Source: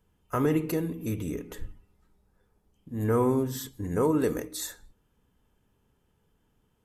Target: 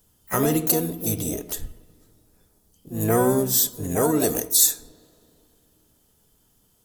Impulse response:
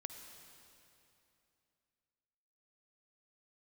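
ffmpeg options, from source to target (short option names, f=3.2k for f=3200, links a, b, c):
-filter_complex "[0:a]aexciter=amount=8.1:drive=0.9:freq=3.4k,asplit=2[a][b];[b]asetrate=66075,aresample=44100,atempo=0.66742,volume=-6dB[c];[a][c]amix=inputs=2:normalize=0,asplit=2[d][e];[1:a]atrim=start_sample=2205,lowpass=2.9k[f];[e][f]afir=irnorm=-1:irlink=0,volume=-12dB[g];[d][g]amix=inputs=2:normalize=0,volume=1.5dB"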